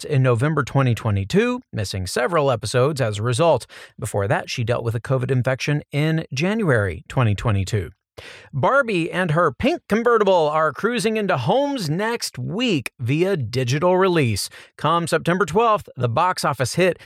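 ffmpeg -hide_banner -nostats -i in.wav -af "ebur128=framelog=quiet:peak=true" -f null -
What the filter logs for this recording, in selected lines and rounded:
Integrated loudness:
  I:         -20.4 LUFS
  Threshold: -30.6 LUFS
Loudness range:
  LRA:         2.4 LU
  Threshold: -40.7 LUFS
  LRA low:   -21.8 LUFS
  LRA high:  -19.4 LUFS
True peak:
  Peak:       -6.2 dBFS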